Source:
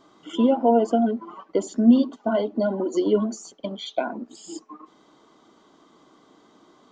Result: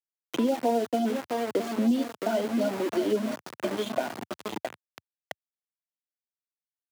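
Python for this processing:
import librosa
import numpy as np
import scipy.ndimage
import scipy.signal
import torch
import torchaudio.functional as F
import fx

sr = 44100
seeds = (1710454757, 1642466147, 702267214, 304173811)

y = scipy.signal.sosfilt(scipy.signal.butter(4, 4700.0, 'lowpass', fs=sr, output='sos'), x)
y = fx.notch(y, sr, hz=1100.0, q=5.7)
y = fx.echo_feedback(y, sr, ms=664, feedback_pct=46, wet_db=-9.5)
y = np.where(np.abs(y) >= 10.0 ** (-28.5 / 20.0), y, 0.0)
y = scipy.signal.sosfilt(scipy.signal.butter(4, 94.0, 'highpass', fs=sr, output='sos'), y)
y = fx.low_shelf(y, sr, hz=170.0, db=-7.0)
y = fx.band_squash(y, sr, depth_pct=70)
y = y * 10.0 ** (-4.0 / 20.0)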